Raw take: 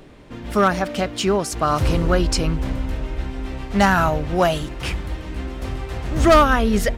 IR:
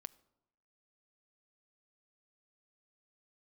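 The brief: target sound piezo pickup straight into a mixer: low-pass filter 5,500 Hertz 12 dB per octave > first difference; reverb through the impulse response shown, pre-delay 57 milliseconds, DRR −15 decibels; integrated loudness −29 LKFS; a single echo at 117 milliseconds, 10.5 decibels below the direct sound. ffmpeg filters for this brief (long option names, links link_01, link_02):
-filter_complex "[0:a]aecho=1:1:117:0.299,asplit=2[link_01][link_02];[1:a]atrim=start_sample=2205,adelay=57[link_03];[link_02][link_03]afir=irnorm=-1:irlink=0,volume=20.5dB[link_04];[link_01][link_04]amix=inputs=2:normalize=0,lowpass=5500,aderivative,volume=-9.5dB"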